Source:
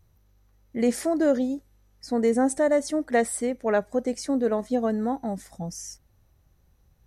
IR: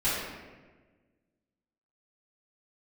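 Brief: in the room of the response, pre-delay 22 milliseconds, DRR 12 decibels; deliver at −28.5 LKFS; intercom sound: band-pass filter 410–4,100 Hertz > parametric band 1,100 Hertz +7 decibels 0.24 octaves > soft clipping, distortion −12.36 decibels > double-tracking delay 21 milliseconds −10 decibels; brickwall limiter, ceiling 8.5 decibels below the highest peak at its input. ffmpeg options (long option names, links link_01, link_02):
-filter_complex "[0:a]alimiter=limit=-19dB:level=0:latency=1,asplit=2[link_01][link_02];[1:a]atrim=start_sample=2205,adelay=22[link_03];[link_02][link_03]afir=irnorm=-1:irlink=0,volume=-23.5dB[link_04];[link_01][link_04]amix=inputs=2:normalize=0,highpass=410,lowpass=4100,equalizer=frequency=1100:width_type=o:width=0.24:gain=7,asoftclip=threshold=-28dB,asplit=2[link_05][link_06];[link_06]adelay=21,volume=-10dB[link_07];[link_05][link_07]amix=inputs=2:normalize=0,volume=7dB"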